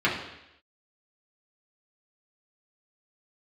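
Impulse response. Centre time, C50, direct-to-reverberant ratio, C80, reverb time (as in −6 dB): 37 ms, 5.5 dB, −6.5 dB, 8.5 dB, 0.85 s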